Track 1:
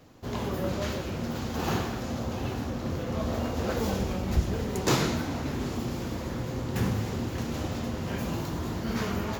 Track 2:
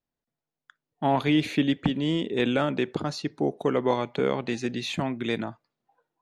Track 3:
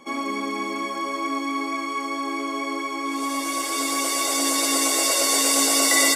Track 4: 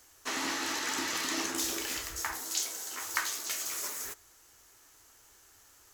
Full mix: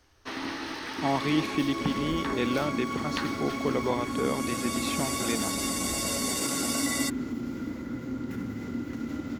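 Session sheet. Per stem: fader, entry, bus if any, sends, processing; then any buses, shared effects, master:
-10.5 dB, 1.55 s, no send, notch 720 Hz, Q 15; limiter -23.5 dBFS, peak gain reduction 11.5 dB; small resonant body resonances 270/1400/2000 Hz, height 18 dB, ringing for 50 ms
-4.5 dB, 0.00 s, no send, dry
-8.5 dB, 0.95 s, no send, limiter -12.5 dBFS, peak gain reduction 6 dB
-1.5 dB, 0.00 s, no send, self-modulated delay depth 0.23 ms; polynomial smoothing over 15 samples; low shelf 320 Hz +11.5 dB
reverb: off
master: dry

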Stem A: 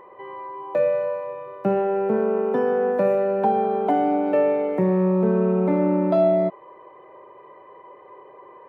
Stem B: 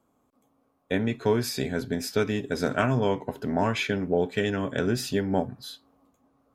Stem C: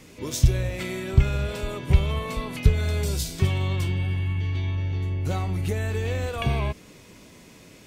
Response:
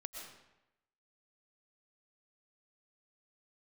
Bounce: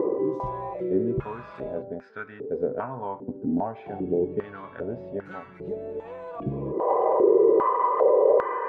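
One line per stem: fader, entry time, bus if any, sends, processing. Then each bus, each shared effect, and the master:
-1.5 dB, 0.00 s, no send, bell 460 Hz +12.5 dB 0.24 oct; fast leveller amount 100%; auto duck -23 dB, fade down 1.20 s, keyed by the second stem
0.0 dB, 0.00 s, send -16.5 dB, LPF 3900 Hz 12 dB/oct; low shelf 170 Hz +9 dB
0.0 dB, 0.00 s, muted 1.82–3.86, no send, comb 6 ms, depth 96%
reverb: on, RT60 0.90 s, pre-delay 80 ms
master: tilt -2.5 dB/oct; stepped band-pass 2.5 Hz 290–1500 Hz

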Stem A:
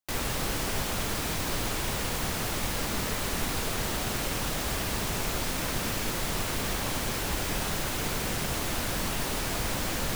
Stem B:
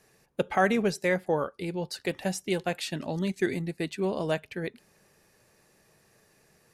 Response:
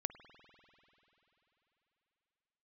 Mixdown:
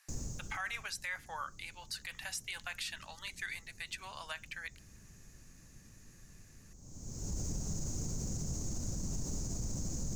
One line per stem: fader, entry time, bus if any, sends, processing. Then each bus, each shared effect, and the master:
+0.5 dB, 0.00 s, no send, EQ curve 160 Hz 0 dB, 1700 Hz -28 dB, 3400 Hz -29 dB, 6700 Hz +3 dB, 9600 Hz -23 dB; auto duck -23 dB, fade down 0.90 s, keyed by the second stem
-1.0 dB, 0.00 s, no send, HPF 1100 Hz 24 dB/oct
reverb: off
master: limiter -29 dBFS, peak gain reduction 11 dB

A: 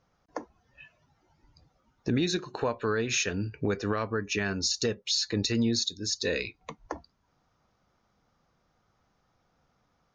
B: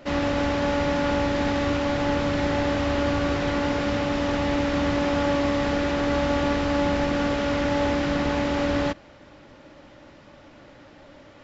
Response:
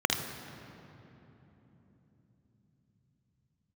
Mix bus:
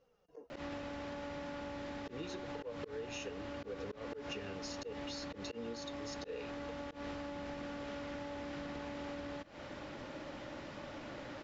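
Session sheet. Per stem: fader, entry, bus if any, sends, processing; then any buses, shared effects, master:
-4.0 dB, 0.00 s, no send, small resonant body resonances 470/2800 Hz, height 18 dB, ringing for 40 ms; flange 0.53 Hz, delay 3.5 ms, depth 7.8 ms, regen +48%
+2.5 dB, 0.50 s, no send, low shelf 100 Hz -5.5 dB; compressor 16:1, threshold -32 dBFS, peak gain reduction 13.5 dB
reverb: off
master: auto swell 0.193 s; compressor 12:1, threshold -40 dBFS, peak gain reduction 16.5 dB

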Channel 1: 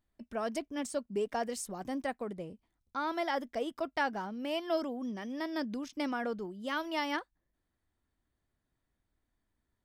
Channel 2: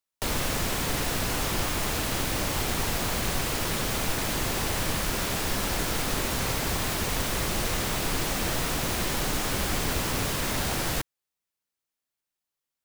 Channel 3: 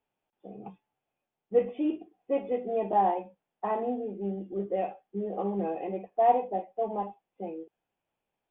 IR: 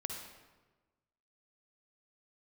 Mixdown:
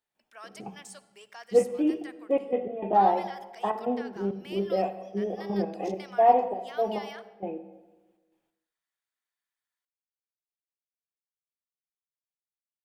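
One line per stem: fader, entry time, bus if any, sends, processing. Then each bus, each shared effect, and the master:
-3.0 dB, 0.00 s, send -11.5 dB, HPF 1400 Hz 12 dB/oct; limiter -33 dBFS, peak gain reduction 10 dB
off
-0.5 dB, 0.00 s, send -3.5 dB, step gate ".xx.x.x.xxx" 101 bpm -12 dB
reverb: on, RT60 1.3 s, pre-delay 47 ms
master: dry

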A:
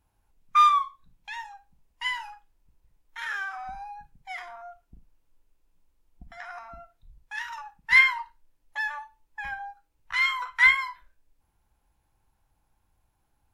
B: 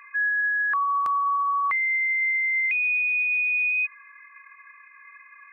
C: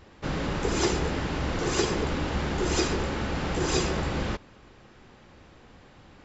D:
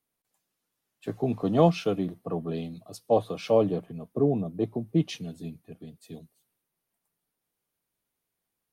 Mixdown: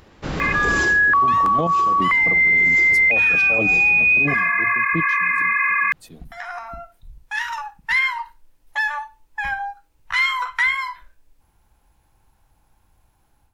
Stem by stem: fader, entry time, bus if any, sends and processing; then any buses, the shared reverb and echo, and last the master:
-1.0 dB, 0.00 s, no send, compressor 2:1, threshold -30 dBFS, peak gain reduction 9.5 dB
+2.0 dB, 0.40 s, no send, fast leveller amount 100%
+2.0 dB, 0.00 s, no send, upward compressor, threshold -54 dBFS; auto duck -19 dB, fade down 0.25 s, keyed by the fourth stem
+2.0 dB, 0.00 s, no send, notch 430 Hz, Q 12; step gate "x..x...." 180 bpm -12 dB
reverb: off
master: AGC; limiter -11 dBFS, peak gain reduction 9.5 dB

